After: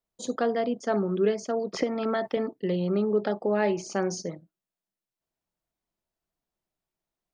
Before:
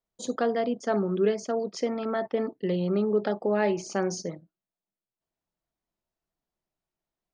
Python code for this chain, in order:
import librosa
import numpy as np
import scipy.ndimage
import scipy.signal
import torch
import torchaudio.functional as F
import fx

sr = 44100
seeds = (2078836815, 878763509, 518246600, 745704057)

y = fx.band_squash(x, sr, depth_pct=100, at=(1.73, 2.37))